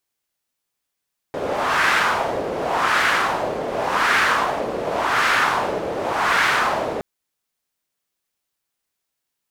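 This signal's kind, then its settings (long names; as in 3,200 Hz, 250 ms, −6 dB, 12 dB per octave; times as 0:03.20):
wind from filtered noise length 5.67 s, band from 490 Hz, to 1,600 Hz, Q 2.1, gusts 5, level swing 8 dB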